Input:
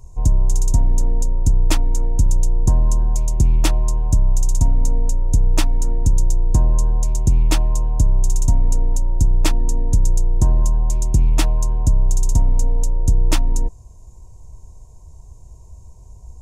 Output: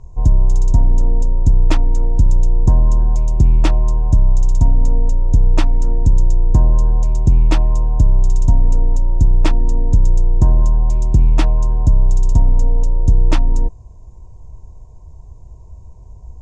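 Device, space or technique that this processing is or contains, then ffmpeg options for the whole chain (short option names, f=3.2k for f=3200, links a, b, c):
through cloth: -af "lowpass=6.3k,highshelf=f=3.2k:g=-11,volume=3.5dB"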